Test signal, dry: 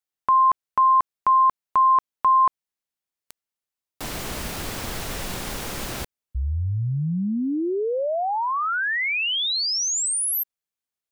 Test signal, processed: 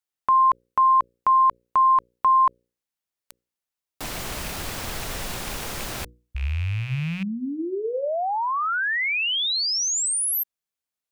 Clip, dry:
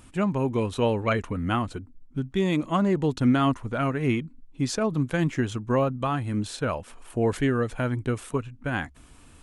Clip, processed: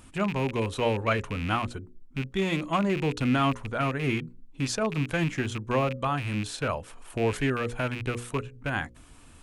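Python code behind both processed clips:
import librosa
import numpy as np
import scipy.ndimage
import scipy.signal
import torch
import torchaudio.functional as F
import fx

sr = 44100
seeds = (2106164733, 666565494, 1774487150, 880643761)

y = fx.rattle_buzz(x, sr, strikes_db=-30.0, level_db=-25.0)
y = fx.hum_notches(y, sr, base_hz=60, count=9)
y = fx.dynamic_eq(y, sr, hz=260.0, q=0.86, threshold_db=-38.0, ratio=4.0, max_db=-4)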